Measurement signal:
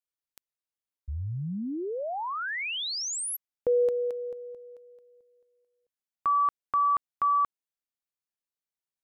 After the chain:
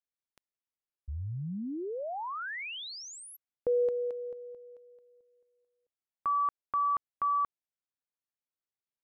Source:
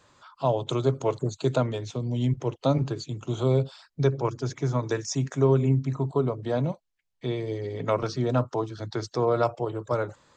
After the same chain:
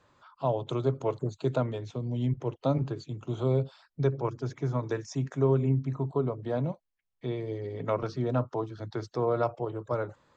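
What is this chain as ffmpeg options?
ffmpeg -i in.wav -af "lowpass=frequency=2300:poles=1,volume=-3.5dB" out.wav

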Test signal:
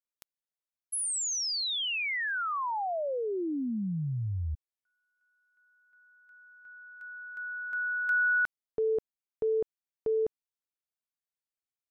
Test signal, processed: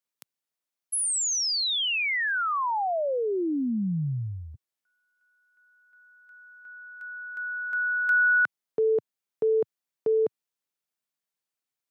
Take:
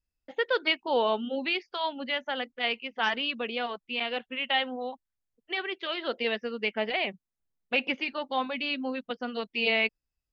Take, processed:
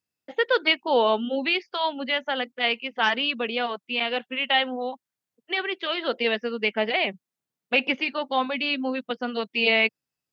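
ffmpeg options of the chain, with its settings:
ffmpeg -i in.wav -af "highpass=frequency=120:width=0.5412,highpass=frequency=120:width=1.3066,volume=5dB" out.wav

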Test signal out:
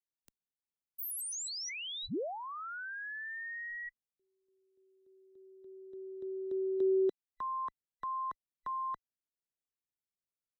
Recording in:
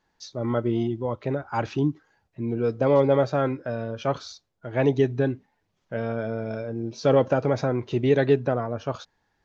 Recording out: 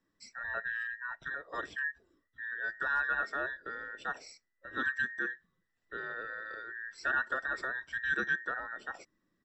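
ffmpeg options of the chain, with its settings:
ffmpeg -i in.wav -filter_complex "[0:a]afftfilt=real='real(if(between(b,1,1012),(2*floor((b-1)/92)+1)*92-b,b),0)':imag='imag(if(between(b,1,1012),(2*floor((b-1)/92)+1)*92-b,b),0)*if(between(b,1,1012),-1,1)':win_size=2048:overlap=0.75,firequalizer=gain_entry='entry(190,0);entry(890,-13);entry(6100,-10)':delay=0.05:min_phase=1,acrossover=split=230|1300[link_01][link_02][link_03];[link_01]acompressor=threshold=-58dB:ratio=6[link_04];[link_04][link_02][link_03]amix=inputs=3:normalize=0" out.wav

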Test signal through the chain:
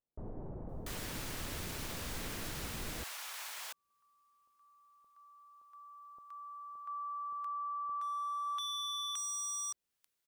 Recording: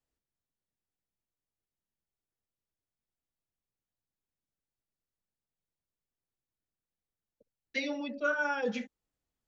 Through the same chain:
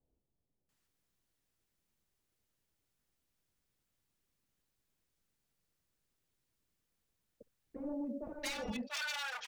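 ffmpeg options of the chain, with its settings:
ffmpeg -i in.wav -filter_complex "[0:a]aeval=exprs='0.0237*(abs(mod(val(0)/0.0237+3,4)-2)-1)':channel_layout=same,alimiter=level_in=18.5dB:limit=-24dB:level=0:latency=1:release=253,volume=-18.5dB,acrossover=split=770[link_01][link_02];[link_02]adelay=690[link_03];[link_01][link_03]amix=inputs=2:normalize=0,volume=9.5dB" out.wav

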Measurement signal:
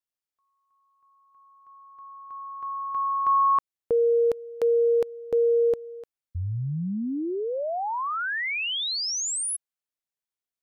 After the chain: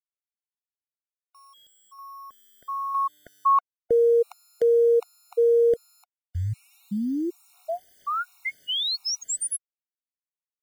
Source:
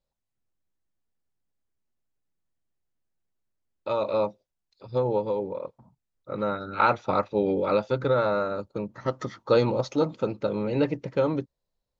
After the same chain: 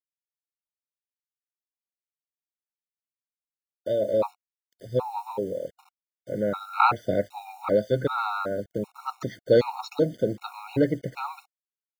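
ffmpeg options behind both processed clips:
ffmpeg -i in.wav -af "acrusher=bits=8:mix=0:aa=0.000001,afftfilt=real='re*gt(sin(2*PI*1.3*pts/sr)*(1-2*mod(floor(b*sr/1024/730),2)),0)':imag='im*gt(sin(2*PI*1.3*pts/sr)*(1-2*mod(floor(b*sr/1024/730),2)),0)':win_size=1024:overlap=0.75,volume=2.5dB" out.wav

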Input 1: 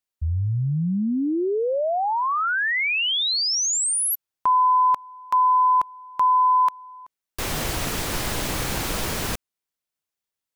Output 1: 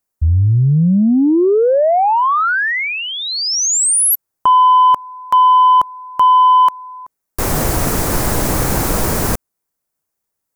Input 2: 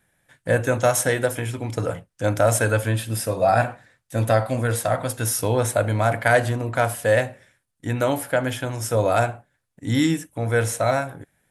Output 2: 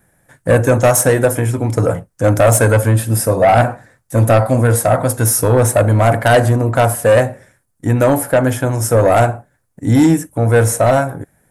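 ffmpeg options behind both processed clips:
ffmpeg -i in.wav -af "equalizer=frequency=3200:width=0.87:gain=-13,aeval=exprs='0.473*(cos(1*acos(clip(val(0)/0.473,-1,1)))-cos(1*PI/2))+0.106*(cos(5*acos(clip(val(0)/0.473,-1,1)))-cos(5*PI/2))':channel_layout=same,volume=5.5dB" out.wav

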